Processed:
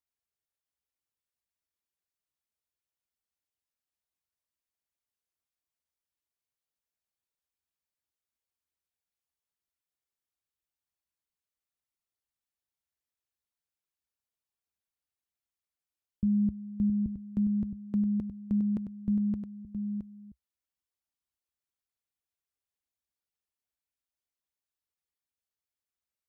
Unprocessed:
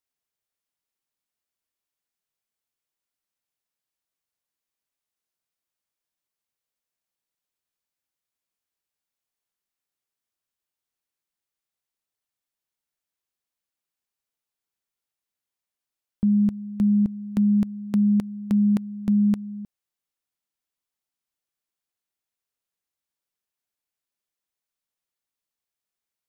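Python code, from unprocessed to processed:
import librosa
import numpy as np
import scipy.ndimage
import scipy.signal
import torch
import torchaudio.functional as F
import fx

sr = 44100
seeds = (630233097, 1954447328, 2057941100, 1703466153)

p1 = fx.envelope_sharpen(x, sr, power=1.5)
p2 = fx.peak_eq(p1, sr, hz=65.0, db=11.5, octaves=0.99)
p3 = p2 + fx.echo_single(p2, sr, ms=668, db=-8.0, dry=0)
y = p3 * librosa.db_to_amplitude(-7.5)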